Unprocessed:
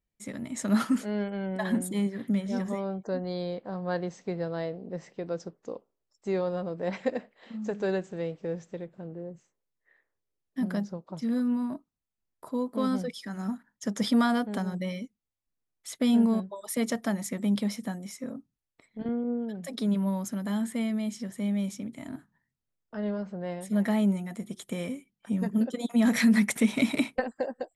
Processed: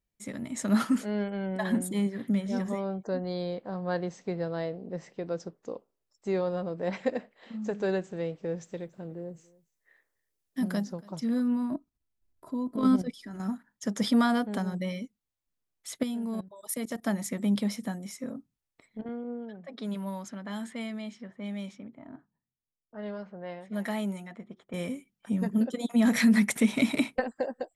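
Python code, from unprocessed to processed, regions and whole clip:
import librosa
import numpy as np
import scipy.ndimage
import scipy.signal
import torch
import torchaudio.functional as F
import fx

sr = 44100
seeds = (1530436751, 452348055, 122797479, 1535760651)

y = fx.chain(x, sr, fx.high_shelf(hz=4100.0, db=9.0),
    fx.echo_single(ms=282, db=-23.5), at=(8.61, 11.2))
y = fx.chain(y, sr, fx.low_shelf(hz=360.0, db=10.0),
    fx.comb(ms=3.0, depth=0.42),
    fx.level_steps(step_db=10), at=(11.71, 13.4))
y = fx.chain(y, sr, fx.high_shelf(hz=10000.0, db=11.5),
    fx.level_steps(step_db=16), at=(16.03, 17.06))
y = fx.chain(y, sr, fx.low_shelf(hz=420.0, db=-10.0),
    fx.env_lowpass(base_hz=370.0, full_db=-31.0), at=(19.01, 24.74))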